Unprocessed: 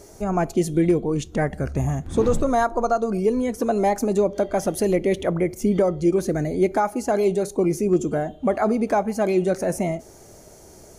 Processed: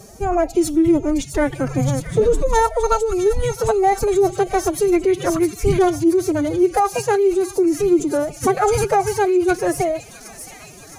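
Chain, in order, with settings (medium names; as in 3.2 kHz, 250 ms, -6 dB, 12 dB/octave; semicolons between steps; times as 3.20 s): feedback echo behind a high-pass 665 ms, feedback 68%, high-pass 2.8 kHz, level -3.5 dB; formant-preserving pitch shift +11.5 st; trim +4.5 dB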